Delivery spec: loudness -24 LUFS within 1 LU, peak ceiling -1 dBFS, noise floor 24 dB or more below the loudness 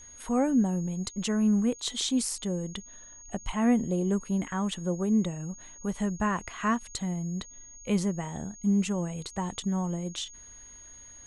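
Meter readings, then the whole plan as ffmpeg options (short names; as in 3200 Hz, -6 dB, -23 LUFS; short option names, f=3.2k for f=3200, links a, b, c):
steady tone 6600 Hz; tone level -47 dBFS; loudness -29.5 LUFS; peak -14.0 dBFS; loudness target -24.0 LUFS
-> -af "bandreject=f=6.6k:w=30"
-af "volume=5.5dB"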